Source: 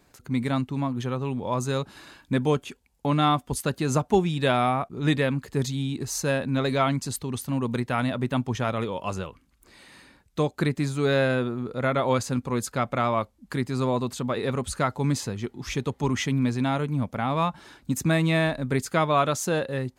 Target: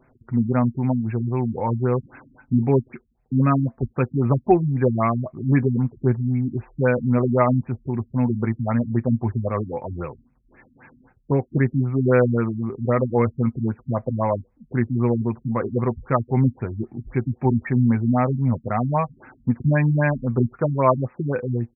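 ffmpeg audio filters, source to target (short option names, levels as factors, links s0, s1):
-af "aecho=1:1:7.3:0.49,asetrate=40517,aresample=44100,afftfilt=real='re*lt(b*sr/1024,270*pow(2700/270,0.5+0.5*sin(2*PI*3.8*pts/sr)))':imag='im*lt(b*sr/1024,270*pow(2700/270,0.5+0.5*sin(2*PI*3.8*pts/sr)))':win_size=1024:overlap=0.75,volume=1.41"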